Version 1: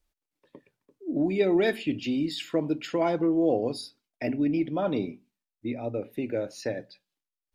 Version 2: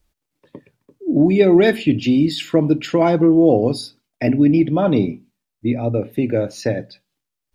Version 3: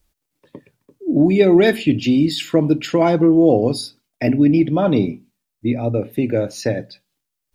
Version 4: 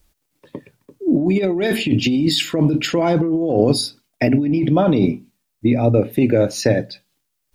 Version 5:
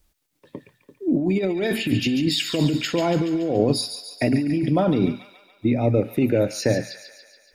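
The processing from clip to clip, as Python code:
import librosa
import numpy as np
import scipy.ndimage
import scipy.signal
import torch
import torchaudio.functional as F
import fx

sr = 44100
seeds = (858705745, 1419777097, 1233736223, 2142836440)

y1 = fx.peak_eq(x, sr, hz=110.0, db=8.5, octaves=2.3)
y1 = y1 * 10.0 ** (8.5 / 20.0)
y2 = fx.high_shelf(y1, sr, hz=5800.0, db=5.5)
y3 = fx.over_compress(y2, sr, threshold_db=-18.0, ratio=-1.0)
y3 = y3 * 10.0 ** (2.5 / 20.0)
y4 = fx.echo_wet_highpass(y3, sr, ms=142, feedback_pct=60, hz=1500.0, wet_db=-7.5)
y4 = y4 * 10.0 ** (-4.5 / 20.0)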